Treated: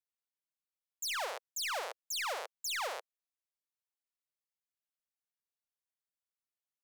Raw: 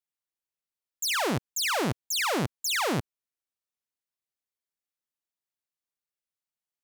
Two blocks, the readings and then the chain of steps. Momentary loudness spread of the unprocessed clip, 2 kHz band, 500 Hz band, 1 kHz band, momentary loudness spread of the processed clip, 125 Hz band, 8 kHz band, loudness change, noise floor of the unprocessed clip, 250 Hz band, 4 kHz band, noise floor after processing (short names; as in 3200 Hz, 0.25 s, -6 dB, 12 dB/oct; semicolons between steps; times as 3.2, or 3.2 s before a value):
3 LU, -8.5 dB, -10.5 dB, -8.0 dB, 4 LU, under -40 dB, -9.0 dB, -9.5 dB, under -85 dBFS, under -35 dB, -8.5 dB, under -85 dBFS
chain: steep high-pass 490 Hz 48 dB/oct; soft clip -19 dBFS, distortion -20 dB; gain -7.5 dB